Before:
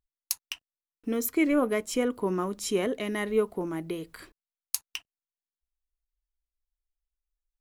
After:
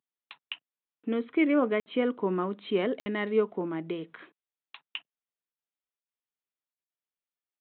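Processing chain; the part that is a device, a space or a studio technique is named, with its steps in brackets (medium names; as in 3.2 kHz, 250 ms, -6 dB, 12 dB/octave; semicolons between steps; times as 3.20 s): 4.18–4.81 s: bass shelf 150 Hz -11 dB; call with lost packets (high-pass 150 Hz 24 dB/octave; resampled via 8 kHz; lost packets of 60 ms random)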